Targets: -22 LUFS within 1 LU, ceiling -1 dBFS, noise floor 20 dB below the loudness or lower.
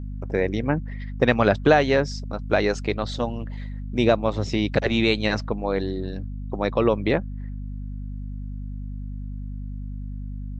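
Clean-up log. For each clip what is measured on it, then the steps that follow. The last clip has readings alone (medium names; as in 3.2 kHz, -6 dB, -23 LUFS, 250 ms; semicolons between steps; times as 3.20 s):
hum 50 Hz; highest harmonic 250 Hz; hum level -30 dBFS; loudness -23.5 LUFS; peak level -3.0 dBFS; loudness target -22.0 LUFS
-> de-hum 50 Hz, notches 5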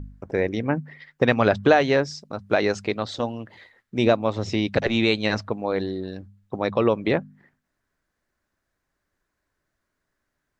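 hum not found; loudness -23.5 LUFS; peak level -3.5 dBFS; loudness target -22.0 LUFS
-> trim +1.5 dB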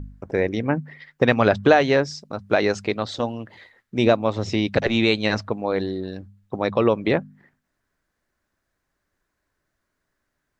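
loudness -22.0 LUFS; peak level -2.0 dBFS; noise floor -78 dBFS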